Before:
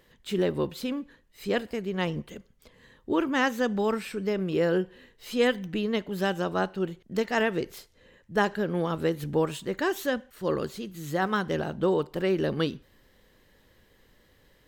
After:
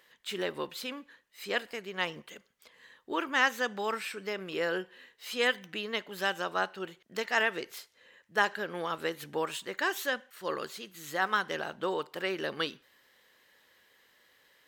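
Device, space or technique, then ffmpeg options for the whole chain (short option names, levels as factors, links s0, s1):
filter by subtraction: -filter_complex "[0:a]asplit=2[s0][s1];[s1]lowpass=1600,volume=-1[s2];[s0][s2]amix=inputs=2:normalize=0"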